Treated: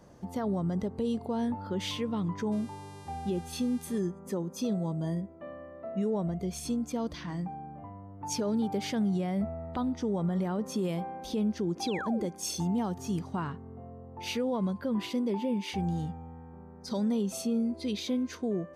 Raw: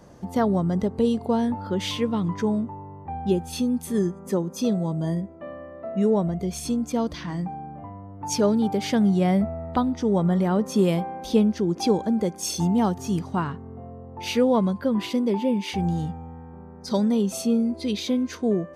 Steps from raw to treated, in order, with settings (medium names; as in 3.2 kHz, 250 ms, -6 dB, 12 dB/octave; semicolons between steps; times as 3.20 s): 2.51–3.99 s: mains buzz 400 Hz, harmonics 29, -48 dBFS -4 dB/octave; 11.87–12.27 s: painted sound fall 240–4200 Hz -31 dBFS; peak limiter -16.5 dBFS, peak gain reduction 9 dB; trim -6 dB